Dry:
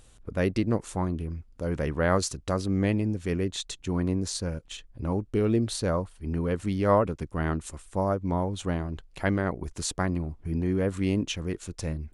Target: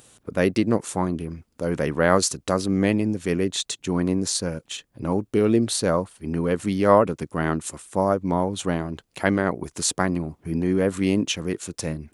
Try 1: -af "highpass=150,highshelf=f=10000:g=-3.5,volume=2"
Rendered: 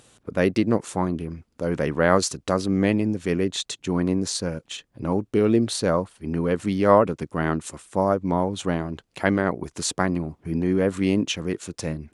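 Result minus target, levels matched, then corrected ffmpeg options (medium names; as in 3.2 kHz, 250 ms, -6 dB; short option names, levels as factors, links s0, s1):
8 kHz band -3.5 dB
-af "highpass=150,highshelf=f=10000:g=8.5,volume=2"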